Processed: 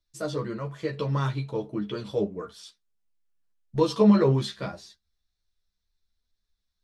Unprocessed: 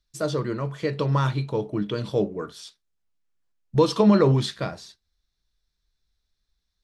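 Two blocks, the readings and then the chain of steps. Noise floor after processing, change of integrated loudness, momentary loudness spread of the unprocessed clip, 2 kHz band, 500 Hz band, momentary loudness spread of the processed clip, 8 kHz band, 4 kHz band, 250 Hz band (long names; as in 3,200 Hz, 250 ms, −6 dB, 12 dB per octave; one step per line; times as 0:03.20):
−80 dBFS, −2.5 dB, 15 LU, −4.0 dB, −3.0 dB, 18 LU, −4.5 dB, −4.5 dB, −1.5 dB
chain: pitch vibrato 1.9 Hz 13 cents
multi-voice chorus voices 4, 0.3 Hz, delay 12 ms, depth 3.1 ms
level −1.5 dB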